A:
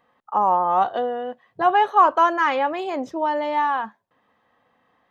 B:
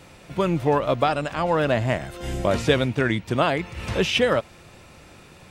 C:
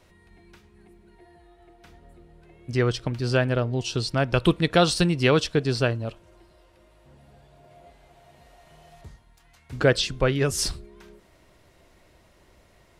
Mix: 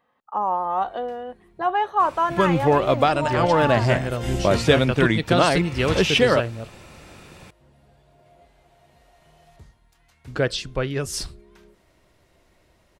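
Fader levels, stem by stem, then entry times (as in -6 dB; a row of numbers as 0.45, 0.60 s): -4.5, +2.5, -3.0 dB; 0.00, 2.00, 0.55 s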